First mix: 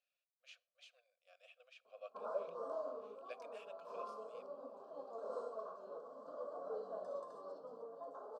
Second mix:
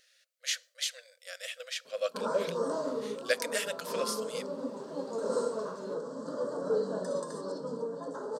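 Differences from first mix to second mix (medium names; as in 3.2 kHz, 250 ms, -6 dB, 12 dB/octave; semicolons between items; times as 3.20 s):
speech +9.0 dB; master: remove vowel filter a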